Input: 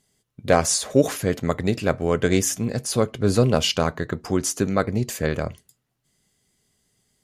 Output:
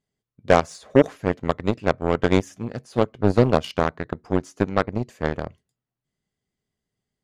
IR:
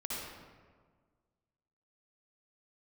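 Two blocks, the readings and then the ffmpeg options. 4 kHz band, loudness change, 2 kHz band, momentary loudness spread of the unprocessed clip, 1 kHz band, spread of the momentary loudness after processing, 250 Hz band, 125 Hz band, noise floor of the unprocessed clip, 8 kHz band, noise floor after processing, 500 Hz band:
-8.5 dB, -0.5 dB, 0.0 dB, 7 LU, +2.5 dB, 9 LU, 0.0 dB, -1.5 dB, -75 dBFS, -19.0 dB, under -85 dBFS, +0.5 dB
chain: -af "aemphasis=mode=reproduction:type=75fm,aeval=exprs='0.708*(cos(1*acos(clip(val(0)/0.708,-1,1)))-cos(1*PI/2))+0.0794*(cos(7*acos(clip(val(0)/0.708,-1,1)))-cos(7*PI/2))':c=same,volume=1.19"

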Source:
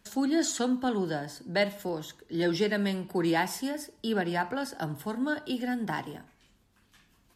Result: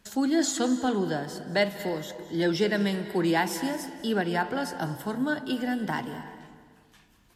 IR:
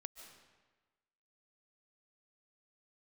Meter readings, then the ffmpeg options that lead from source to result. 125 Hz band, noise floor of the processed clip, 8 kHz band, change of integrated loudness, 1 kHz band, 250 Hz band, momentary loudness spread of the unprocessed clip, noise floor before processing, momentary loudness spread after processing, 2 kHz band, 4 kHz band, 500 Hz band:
+2.5 dB, -60 dBFS, +2.5 dB, +2.5 dB, +2.5 dB, +2.5 dB, 9 LU, -66 dBFS, 8 LU, +2.5 dB, +2.5 dB, +2.5 dB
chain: -filter_complex "[0:a]asplit=2[s0][s1];[1:a]atrim=start_sample=2205,asetrate=33075,aresample=44100[s2];[s1][s2]afir=irnorm=-1:irlink=0,volume=1.88[s3];[s0][s3]amix=inputs=2:normalize=0,volume=0.596"

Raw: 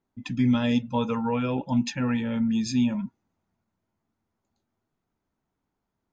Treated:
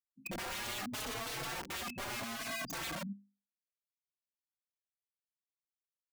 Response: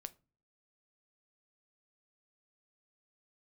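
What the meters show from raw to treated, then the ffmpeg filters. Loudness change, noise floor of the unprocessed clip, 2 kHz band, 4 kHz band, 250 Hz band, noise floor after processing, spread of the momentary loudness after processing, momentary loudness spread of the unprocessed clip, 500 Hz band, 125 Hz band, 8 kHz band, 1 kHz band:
-13.5 dB, -82 dBFS, -2.5 dB, -3.5 dB, -23.5 dB, under -85 dBFS, 4 LU, 4 LU, -14.0 dB, -20.0 dB, no reading, -8.5 dB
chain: -filter_complex "[0:a]afftfilt=real='re*gte(hypot(re,im),0.126)':imag='im*gte(hypot(re,im),0.126)':win_size=1024:overlap=0.75,highpass=f=98:p=1,bandreject=f=5100:w=6.3,afftfilt=real='re*gte(hypot(re,im),0.0126)':imag='im*gte(hypot(re,im),0.0126)':win_size=1024:overlap=0.75,highshelf=f=4200:g=-3,bandreject=f=50:t=h:w=6,bandreject=f=100:t=h:w=6,bandreject=f=150:t=h:w=6,bandreject=f=200:t=h:w=6,bandreject=f=250:t=h:w=6,bandreject=f=300:t=h:w=6,bandreject=f=350:t=h:w=6,bandreject=f=400:t=h:w=6,bandreject=f=450:t=h:w=6,aexciter=amount=10.3:drive=1.7:freq=2500,adynamicequalizer=threshold=0.0158:dfrequency=300:dqfactor=0.89:tfrequency=300:tqfactor=0.89:attack=5:release=100:ratio=0.375:range=2.5:mode=boostabove:tftype=bell,aecho=1:1:30|67:0.237|0.224,aeval=exprs='(mod(23.7*val(0)+1,2)-1)/23.7':c=same,asplit=2[s0][s1];[s1]adelay=4.1,afreqshift=0.76[s2];[s0][s2]amix=inputs=2:normalize=1,volume=0.562"

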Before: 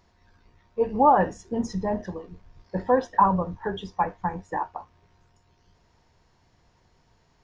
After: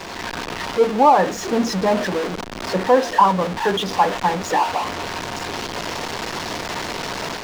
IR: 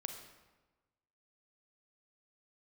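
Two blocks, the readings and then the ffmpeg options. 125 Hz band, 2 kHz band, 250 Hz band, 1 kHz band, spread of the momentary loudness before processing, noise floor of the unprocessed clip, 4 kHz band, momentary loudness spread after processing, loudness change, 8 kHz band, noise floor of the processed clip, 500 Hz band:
+4.5 dB, +13.0 dB, +6.0 dB, +6.5 dB, 16 LU, -64 dBFS, +22.0 dB, 12 LU, +4.5 dB, no reading, -32 dBFS, +8.0 dB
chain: -filter_complex "[0:a]aeval=exprs='val(0)+0.5*0.0596*sgn(val(0))':c=same,dynaudnorm=f=120:g=3:m=2.11,acrossover=split=190 6400:gain=0.158 1 0.224[s0][s1][s2];[s0][s1][s2]amix=inputs=3:normalize=0"

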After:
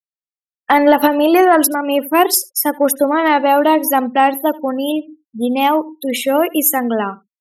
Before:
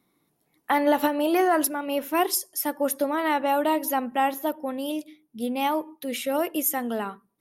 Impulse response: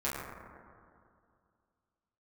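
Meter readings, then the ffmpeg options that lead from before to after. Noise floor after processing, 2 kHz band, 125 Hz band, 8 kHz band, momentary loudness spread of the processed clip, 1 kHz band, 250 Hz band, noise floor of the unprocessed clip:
under -85 dBFS, +10.5 dB, no reading, +10.5 dB, 9 LU, +10.5 dB, +11.0 dB, -72 dBFS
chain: -af "afftfilt=real='re*gte(hypot(re,im),0.0158)':imag='im*gte(hypot(re,im),0.0158)':win_size=1024:overlap=0.75,acontrast=85,aecho=1:1:77:0.0708,volume=1.58"

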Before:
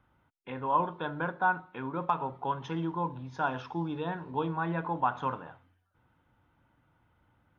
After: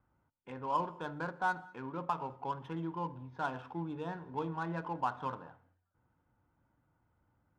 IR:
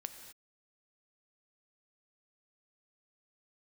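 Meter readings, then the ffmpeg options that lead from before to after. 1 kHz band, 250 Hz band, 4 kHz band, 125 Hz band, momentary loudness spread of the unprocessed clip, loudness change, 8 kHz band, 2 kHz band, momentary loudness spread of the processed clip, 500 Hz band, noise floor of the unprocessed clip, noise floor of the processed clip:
-6.0 dB, -5.5 dB, -6.0 dB, -5.5 dB, 8 LU, -5.5 dB, no reading, -6.0 dB, 7 LU, -5.5 dB, -72 dBFS, -78 dBFS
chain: -filter_complex "[0:a]adynamicsmooth=sensitivity=7.5:basefreq=2000,asplit=2[s0][s1];[1:a]atrim=start_sample=2205,afade=t=out:st=0.27:d=0.01,atrim=end_sample=12348[s2];[s1][s2]afir=irnorm=-1:irlink=0,volume=0.473[s3];[s0][s3]amix=inputs=2:normalize=0,volume=0.398"

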